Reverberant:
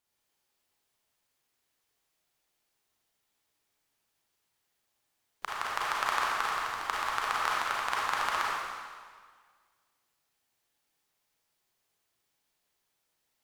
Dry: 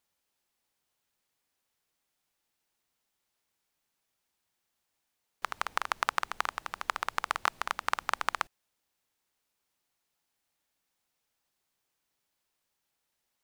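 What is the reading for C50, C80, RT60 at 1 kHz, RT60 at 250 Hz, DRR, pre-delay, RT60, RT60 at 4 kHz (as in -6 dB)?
-3.5 dB, -1.0 dB, 1.8 s, 1.9 s, -5.5 dB, 31 ms, 1.7 s, 1.6 s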